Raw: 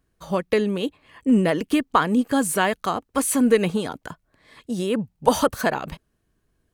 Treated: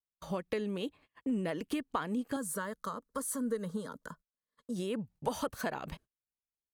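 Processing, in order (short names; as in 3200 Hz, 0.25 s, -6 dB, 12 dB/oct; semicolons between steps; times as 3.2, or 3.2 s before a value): gate -45 dBFS, range -33 dB; compressor 2.5:1, threshold -28 dBFS, peak gain reduction 11.5 dB; 2.36–4.76 fixed phaser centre 500 Hz, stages 8; gain -6.5 dB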